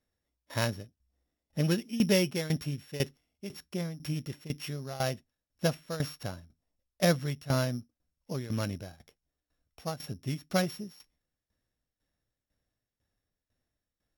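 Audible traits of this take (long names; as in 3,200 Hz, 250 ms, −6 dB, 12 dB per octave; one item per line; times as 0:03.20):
a buzz of ramps at a fixed pitch in blocks of 8 samples
tremolo saw down 2 Hz, depth 85%
Opus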